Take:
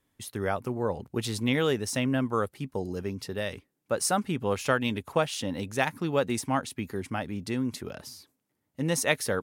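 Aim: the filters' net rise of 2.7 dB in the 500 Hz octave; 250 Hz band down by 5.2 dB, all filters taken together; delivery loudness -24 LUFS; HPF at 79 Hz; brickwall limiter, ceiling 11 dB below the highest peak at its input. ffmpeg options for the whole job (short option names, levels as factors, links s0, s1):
-af "highpass=79,equalizer=f=250:t=o:g=-8,equalizer=f=500:t=o:g=5,volume=2.51,alimiter=limit=0.299:level=0:latency=1"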